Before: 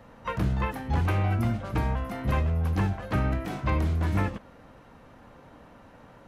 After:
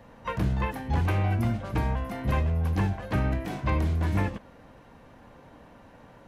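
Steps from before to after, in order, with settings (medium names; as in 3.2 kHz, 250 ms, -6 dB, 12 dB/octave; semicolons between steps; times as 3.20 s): band-stop 1.3 kHz, Q 10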